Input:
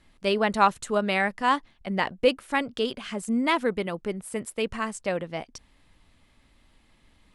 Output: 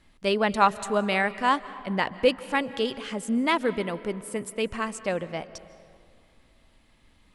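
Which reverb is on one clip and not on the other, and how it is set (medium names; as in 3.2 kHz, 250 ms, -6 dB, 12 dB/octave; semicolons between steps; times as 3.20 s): algorithmic reverb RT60 2.4 s, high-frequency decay 0.55×, pre-delay 110 ms, DRR 15.5 dB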